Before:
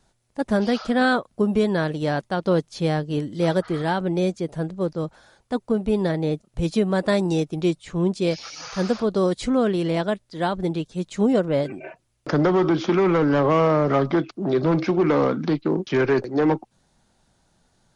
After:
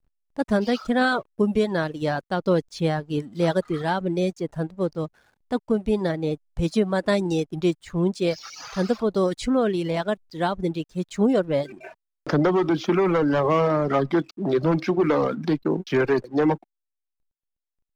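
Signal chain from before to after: reverb removal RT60 0.83 s; backlash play -49.5 dBFS

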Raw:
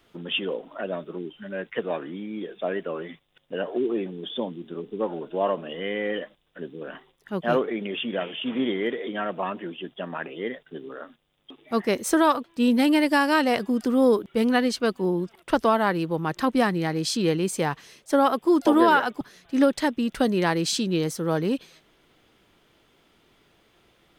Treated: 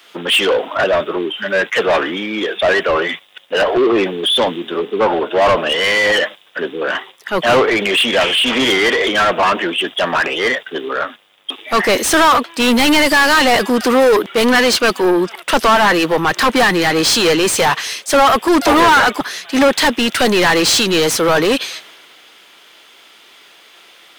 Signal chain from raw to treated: tilt +2.5 dB/oct; overdrive pedal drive 32 dB, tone 3300 Hz, clips at -6 dBFS; three-band expander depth 40%; gain +2 dB

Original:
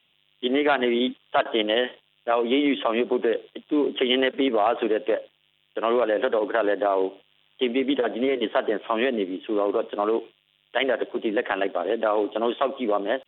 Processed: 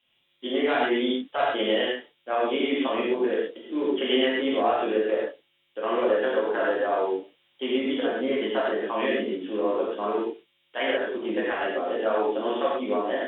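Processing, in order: non-linear reverb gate 0.16 s flat, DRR -6.5 dB; gain -9 dB

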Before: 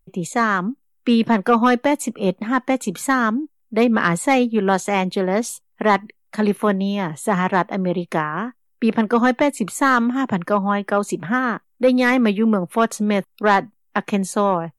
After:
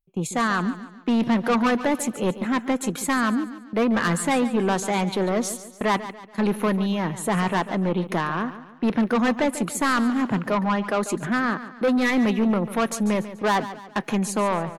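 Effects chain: gate -34 dBFS, range -18 dB; soft clip -16.5 dBFS, distortion -10 dB; feedback echo 0.143 s, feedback 42%, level -13.5 dB

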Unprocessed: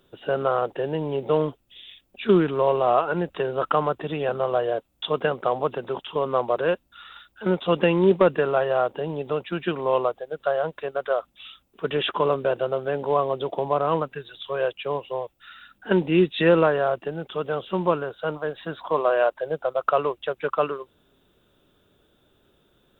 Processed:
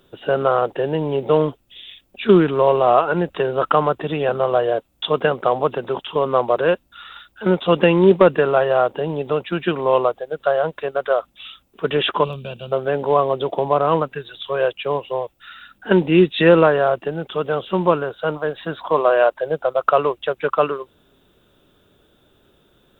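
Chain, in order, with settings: spectral gain 12.24–12.72, 240–2300 Hz -16 dB; gain +5.5 dB

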